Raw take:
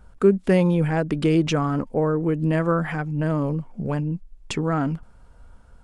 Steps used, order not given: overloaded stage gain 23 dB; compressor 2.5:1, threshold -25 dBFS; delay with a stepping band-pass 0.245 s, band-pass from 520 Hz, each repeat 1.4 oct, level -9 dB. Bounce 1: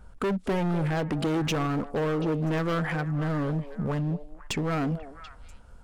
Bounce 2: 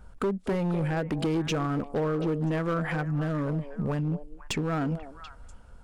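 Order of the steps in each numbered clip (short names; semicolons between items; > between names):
overloaded stage > compressor > delay with a stepping band-pass; compressor > delay with a stepping band-pass > overloaded stage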